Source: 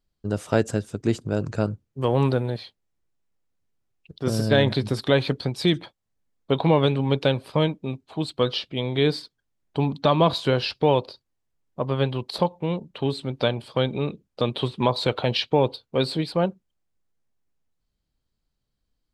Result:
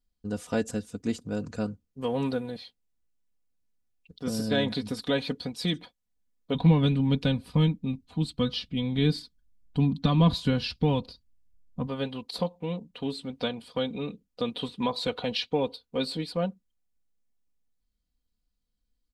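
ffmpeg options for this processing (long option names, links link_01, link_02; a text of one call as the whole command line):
ffmpeg -i in.wav -filter_complex "[0:a]asplit=3[link_01][link_02][link_03];[link_01]afade=type=out:start_time=6.54:duration=0.02[link_04];[link_02]asubboost=boost=6:cutoff=190,afade=type=in:start_time=6.54:duration=0.02,afade=type=out:start_time=11.86:duration=0.02[link_05];[link_03]afade=type=in:start_time=11.86:duration=0.02[link_06];[link_04][link_05][link_06]amix=inputs=3:normalize=0,equalizer=frequency=850:width=0.31:gain=-6,aecho=1:1:4.1:0.72,volume=-4dB" out.wav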